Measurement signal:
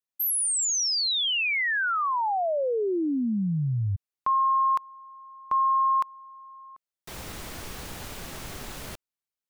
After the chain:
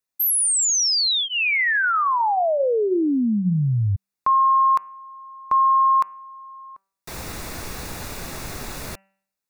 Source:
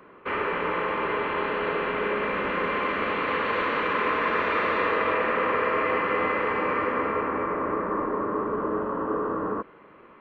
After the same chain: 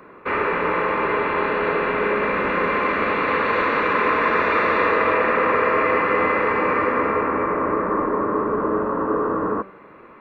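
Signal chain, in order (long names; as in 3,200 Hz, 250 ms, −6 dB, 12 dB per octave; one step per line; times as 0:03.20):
notch filter 3,100 Hz, Q 5.5
hum removal 193.9 Hz, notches 16
level +6 dB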